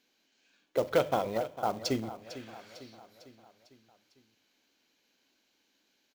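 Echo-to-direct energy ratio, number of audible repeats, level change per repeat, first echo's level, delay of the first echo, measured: −12.5 dB, 4, −5.5 dB, −14.0 dB, 451 ms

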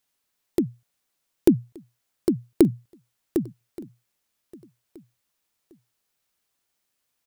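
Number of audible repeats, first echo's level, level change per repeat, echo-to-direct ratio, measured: 2, −22.0 dB, −9.5 dB, −21.5 dB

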